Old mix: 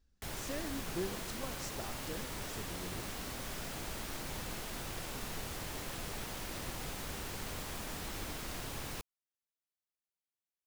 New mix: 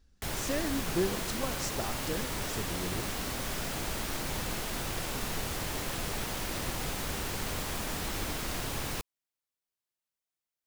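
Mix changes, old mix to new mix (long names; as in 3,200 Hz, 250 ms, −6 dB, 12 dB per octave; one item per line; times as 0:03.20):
speech +8.5 dB
background +7.0 dB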